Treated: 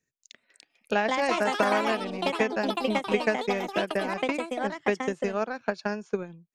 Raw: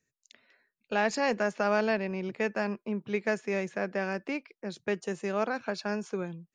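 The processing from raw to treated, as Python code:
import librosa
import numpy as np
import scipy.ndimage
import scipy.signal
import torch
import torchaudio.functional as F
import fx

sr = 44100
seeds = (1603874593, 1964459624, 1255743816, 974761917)

y = fx.transient(x, sr, attack_db=9, sustain_db=-6)
y = fx.echo_pitch(y, sr, ms=355, semitones=4, count=3, db_per_echo=-3.0)
y = F.gain(torch.from_numpy(y), -2.0).numpy()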